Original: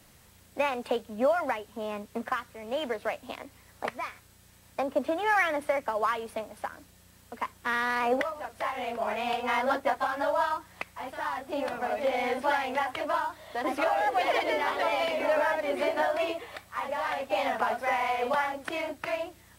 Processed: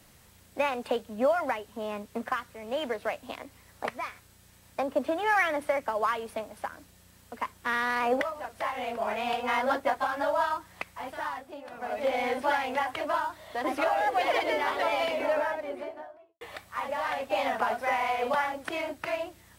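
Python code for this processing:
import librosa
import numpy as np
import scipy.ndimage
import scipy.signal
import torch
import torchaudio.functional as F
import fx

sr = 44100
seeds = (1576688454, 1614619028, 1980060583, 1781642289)

y = fx.studio_fade_out(x, sr, start_s=15.01, length_s=1.4)
y = fx.edit(y, sr, fx.fade_down_up(start_s=11.19, length_s=0.87, db=-15.0, fade_s=0.43), tone=tone)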